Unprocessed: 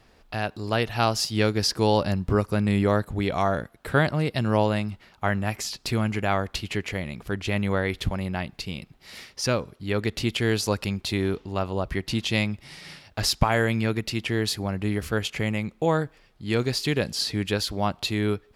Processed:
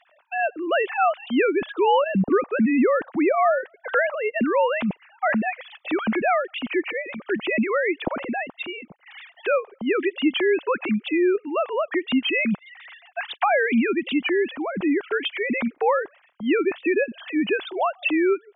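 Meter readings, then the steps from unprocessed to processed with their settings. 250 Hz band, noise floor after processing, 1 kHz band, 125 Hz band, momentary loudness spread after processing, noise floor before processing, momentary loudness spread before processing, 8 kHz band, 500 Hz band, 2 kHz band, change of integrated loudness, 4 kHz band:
+3.5 dB, -60 dBFS, +4.5 dB, -13.0 dB, 9 LU, -58 dBFS, 9 LU, under -40 dB, +5.0 dB, +5.0 dB, +3.0 dB, -4.0 dB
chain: formants replaced by sine waves; dynamic bell 460 Hz, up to -6 dB, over -37 dBFS, Q 6.8; in parallel at -2.5 dB: peak limiter -21 dBFS, peak gain reduction 9 dB

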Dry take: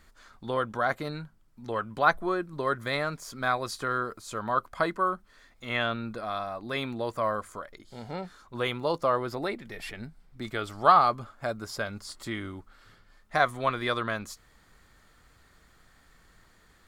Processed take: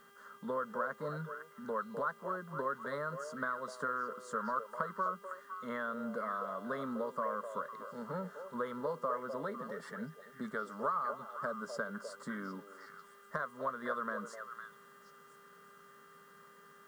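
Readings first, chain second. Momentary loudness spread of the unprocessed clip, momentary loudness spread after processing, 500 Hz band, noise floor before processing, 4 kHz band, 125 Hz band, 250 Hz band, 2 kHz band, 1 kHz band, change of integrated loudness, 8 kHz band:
17 LU, 21 LU, -8.0 dB, -61 dBFS, -20.5 dB, -11.5 dB, -7.0 dB, -9.5 dB, -10.0 dB, -10.0 dB, -11.0 dB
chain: elliptic band-pass 150–9000 Hz; resonant high shelf 2.1 kHz -9 dB, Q 1.5; compression 6:1, threshold -33 dBFS, peak gain reduction 19.5 dB; mains buzz 400 Hz, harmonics 8, -59 dBFS -1 dB/octave; static phaser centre 500 Hz, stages 8; word length cut 12-bit, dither triangular; repeats whose band climbs or falls 253 ms, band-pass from 590 Hz, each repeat 1.4 oct, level -4.5 dB; trim +1 dB

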